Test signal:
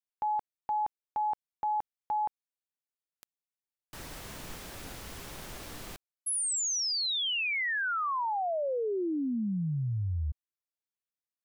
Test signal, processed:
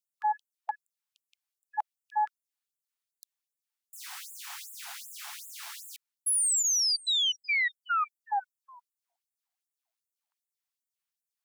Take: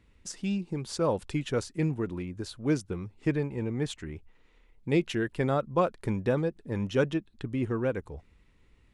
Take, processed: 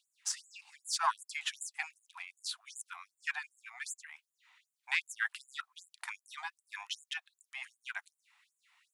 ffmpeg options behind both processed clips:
ffmpeg -i in.wav -af "aeval=exprs='0.211*(cos(1*acos(clip(val(0)/0.211,-1,1)))-cos(1*PI/2))+0.0668*(cos(2*acos(clip(val(0)/0.211,-1,1)))-cos(2*PI/2))+0.00168*(cos(3*acos(clip(val(0)/0.211,-1,1)))-cos(3*PI/2))':channel_layout=same,afftfilt=real='re*gte(b*sr/1024,670*pow(7000/670,0.5+0.5*sin(2*PI*2.6*pts/sr)))':imag='im*gte(b*sr/1024,670*pow(7000/670,0.5+0.5*sin(2*PI*2.6*pts/sr)))':win_size=1024:overlap=0.75,volume=5dB" out.wav

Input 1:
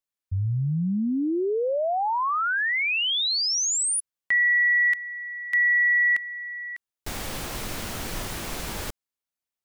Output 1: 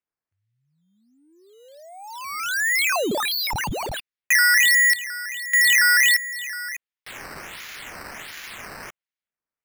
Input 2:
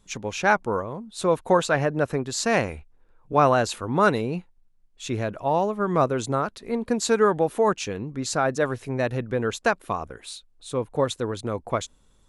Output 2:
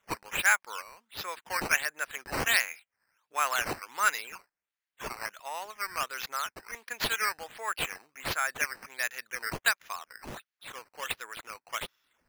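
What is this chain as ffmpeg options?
ffmpeg -i in.wav -af "adynamicsmooth=sensitivity=4:basefreq=6100,highpass=frequency=1900:width_type=q:width=1.8,acrusher=samples=9:mix=1:aa=0.000001:lfo=1:lforange=9:lforate=1.4,volume=-1dB" out.wav

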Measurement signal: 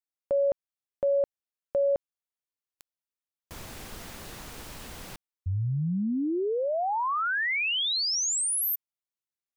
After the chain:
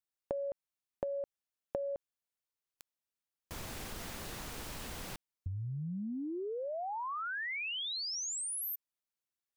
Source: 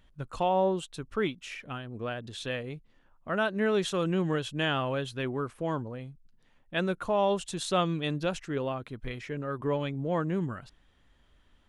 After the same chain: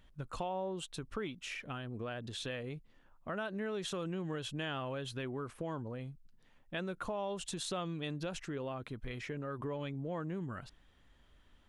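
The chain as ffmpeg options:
ffmpeg -i in.wav -af "acompressor=threshold=-41dB:ratio=3:attack=25:release=76:knee=1:detection=peak,volume=-1dB" out.wav

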